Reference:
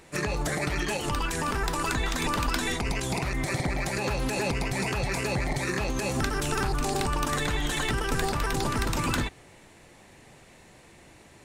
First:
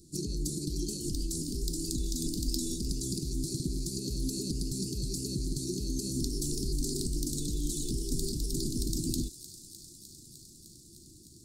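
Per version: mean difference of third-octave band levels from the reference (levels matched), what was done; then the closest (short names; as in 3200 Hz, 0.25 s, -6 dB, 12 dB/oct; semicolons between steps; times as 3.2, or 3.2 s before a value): 16.0 dB: Chebyshev band-stop 350–4400 Hz, order 4; dynamic EQ 100 Hz, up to -7 dB, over -44 dBFS, Q 0.97; thin delay 0.304 s, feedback 82%, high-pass 3700 Hz, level -12.5 dB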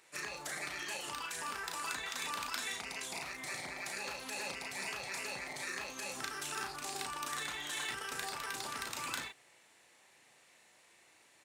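6.5 dB: HPF 1400 Hz 6 dB/oct; modulation noise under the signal 33 dB; doubler 35 ms -4.5 dB; gain -8 dB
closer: second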